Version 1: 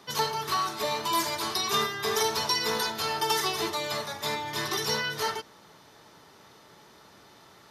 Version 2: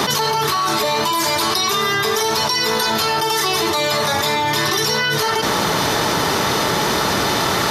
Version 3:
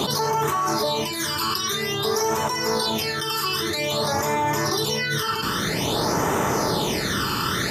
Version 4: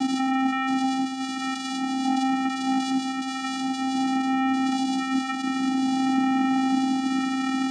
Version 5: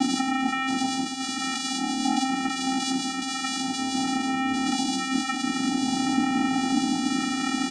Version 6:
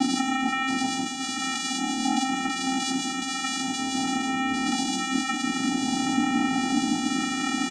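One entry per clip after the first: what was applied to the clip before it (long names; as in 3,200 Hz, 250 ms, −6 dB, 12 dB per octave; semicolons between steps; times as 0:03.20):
envelope flattener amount 100%; level +5 dB
all-pass phaser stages 12, 0.51 Hz, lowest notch 650–4,300 Hz; level −3 dB
channel vocoder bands 4, square 264 Hz
double-tracking delay 17 ms −4 dB; level +4 dB
single-tap delay 157 ms −12 dB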